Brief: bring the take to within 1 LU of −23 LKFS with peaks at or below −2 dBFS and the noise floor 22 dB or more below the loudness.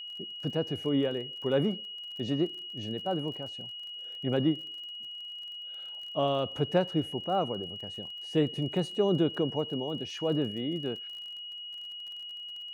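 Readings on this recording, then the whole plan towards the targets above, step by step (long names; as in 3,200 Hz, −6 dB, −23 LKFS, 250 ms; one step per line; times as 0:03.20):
crackle rate 34 per second; interfering tone 2,900 Hz; level of the tone −39 dBFS; integrated loudness −32.0 LKFS; sample peak −13.5 dBFS; target loudness −23.0 LKFS
→ click removal
notch filter 2,900 Hz, Q 30
level +9 dB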